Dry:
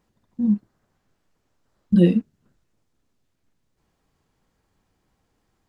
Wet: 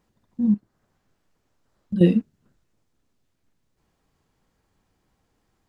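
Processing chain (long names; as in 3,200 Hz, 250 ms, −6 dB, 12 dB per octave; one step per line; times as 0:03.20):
0:00.54–0:02.01: downward compressor 1.5 to 1, threshold −42 dBFS, peak gain reduction 10.5 dB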